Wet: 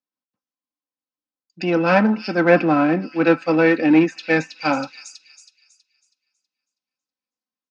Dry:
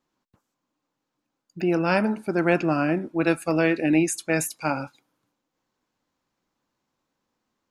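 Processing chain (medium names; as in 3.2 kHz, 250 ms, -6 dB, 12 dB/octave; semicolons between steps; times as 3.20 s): treble shelf 2.9 kHz +7.5 dB; comb 3.9 ms, depth 56%; on a send: feedback echo behind a high-pass 323 ms, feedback 55%, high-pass 4 kHz, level -6 dB; on the sum: low-pass that closes with the level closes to 2.1 kHz, closed at -16.5 dBFS; in parallel at -5 dB: hard clipper -22.5 dBFS, distortion -7 dB; on the sum: elliptic band-pass 130–5500 Hz, stop band 40 dB; three bands expanded up and down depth 70%; trim +2.5 dB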